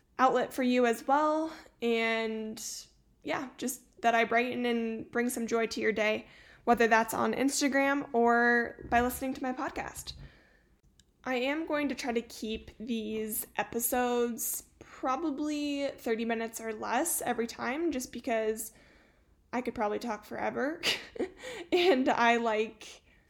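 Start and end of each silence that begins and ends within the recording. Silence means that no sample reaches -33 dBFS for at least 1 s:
10.1–11.27

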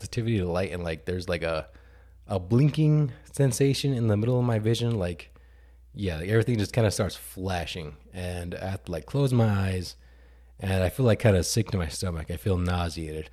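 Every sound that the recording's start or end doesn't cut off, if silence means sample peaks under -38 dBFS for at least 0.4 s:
2.29–5.24
5.96–9.92

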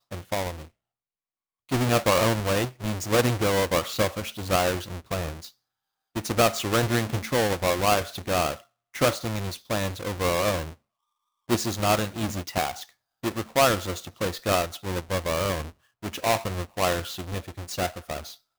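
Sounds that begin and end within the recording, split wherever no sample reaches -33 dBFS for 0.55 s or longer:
1.71–5.45
6.16–10.7

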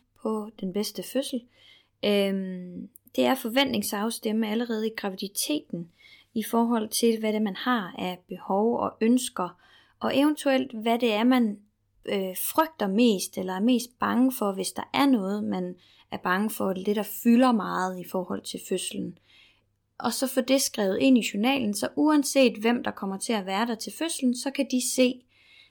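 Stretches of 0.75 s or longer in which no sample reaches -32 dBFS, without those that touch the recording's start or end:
19.1–20

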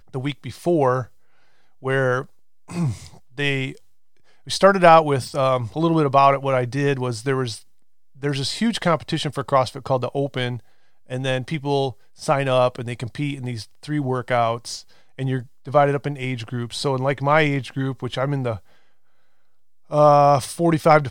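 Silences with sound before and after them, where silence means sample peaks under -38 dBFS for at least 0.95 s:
18.59–19.9

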